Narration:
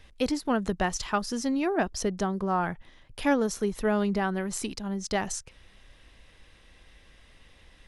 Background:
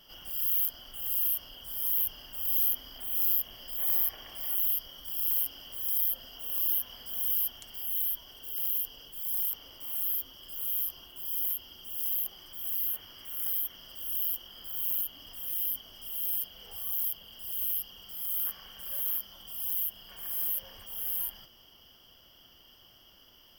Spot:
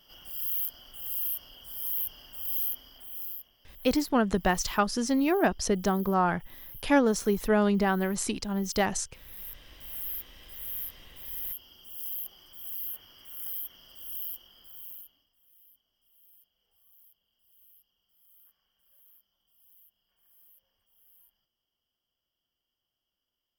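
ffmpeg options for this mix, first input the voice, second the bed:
-filter_complex "[0:a]adelay=3650,volume=1.26[s0];[1:a]volume=3.35,afade=t=out:st=2.54:d=0.99:silence=0.16788,afade=t=in:st=9.26:d=0.56:silence=0.211349,afade=t=out:st=14.15:d=1.14:silence=0.0668344[s1];[s0][s1]amix=inputs=2:normalize=0"

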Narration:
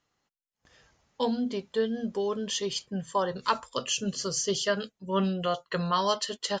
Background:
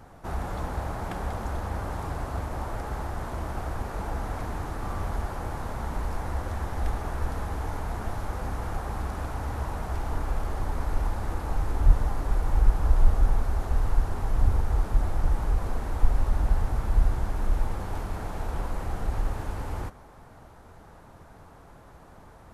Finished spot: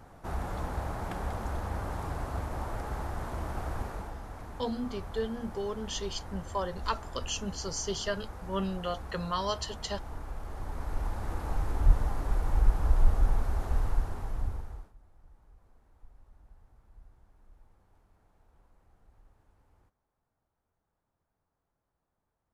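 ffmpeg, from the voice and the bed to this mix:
-filter_complex "[0:a]adelay=3400,volume=0.531[s0];[1:a]volume=1.68,afade=t=out:st=3.82:d=0.33:silence=0.398107,afade=t=in:st=10.39:d=1.06:silence=0.421697,afade=t=out:st=13.77:d=1.16:silence=0.0316228[s1];[s0][s1]amix=inputs=2:normalize=0"

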